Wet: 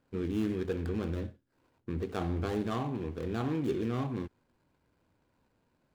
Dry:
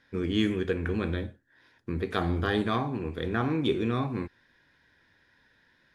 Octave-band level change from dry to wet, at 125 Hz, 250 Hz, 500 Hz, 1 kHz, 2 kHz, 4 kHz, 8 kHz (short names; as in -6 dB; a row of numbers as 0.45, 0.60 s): -3.5 dB, -4.0 dB, -4.5 dB, -6.5 dB, -11.5 dB, -12.5 dB, n/a